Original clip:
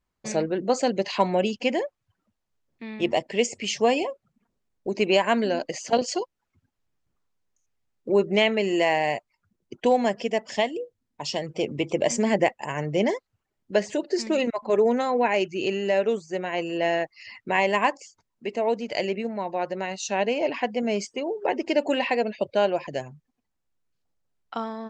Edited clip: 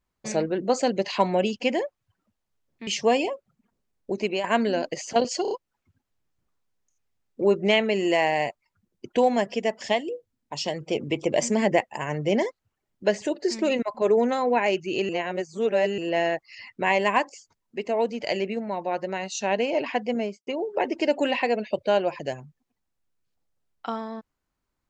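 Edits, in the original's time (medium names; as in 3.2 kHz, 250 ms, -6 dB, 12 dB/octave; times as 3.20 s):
2.87–3.64 s: delete
4.88–5.21 s: fade out, to -11 dB
6.19 s: stutter 0.03 s, 4 plays
15.77–16.66 s: reverse
20.80–21.15 s: studio fade out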